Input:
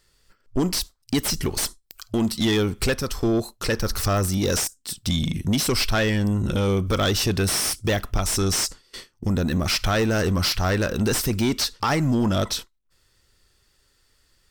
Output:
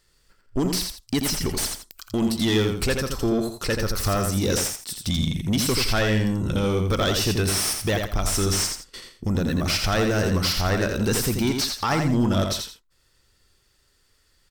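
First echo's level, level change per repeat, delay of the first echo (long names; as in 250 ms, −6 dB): −5.0 dB, −11.0 dB, 84 ms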